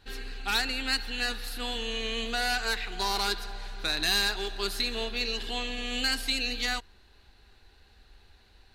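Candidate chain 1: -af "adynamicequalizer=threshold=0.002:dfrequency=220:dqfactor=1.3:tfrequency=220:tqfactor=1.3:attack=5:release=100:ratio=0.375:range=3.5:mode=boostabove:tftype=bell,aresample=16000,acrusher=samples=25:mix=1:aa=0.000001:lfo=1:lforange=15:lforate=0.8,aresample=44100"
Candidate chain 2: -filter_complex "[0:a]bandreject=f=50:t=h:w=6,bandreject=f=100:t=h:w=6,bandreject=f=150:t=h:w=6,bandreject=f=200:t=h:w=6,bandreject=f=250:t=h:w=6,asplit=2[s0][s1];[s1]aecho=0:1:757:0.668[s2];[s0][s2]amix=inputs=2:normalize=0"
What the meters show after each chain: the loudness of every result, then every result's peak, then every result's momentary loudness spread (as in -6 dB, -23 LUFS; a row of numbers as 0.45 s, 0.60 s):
-32.0 LUFS, -28.0 LUFS; -13.5 dBFS, -11.0 dBFS; 6 LU, 6 LU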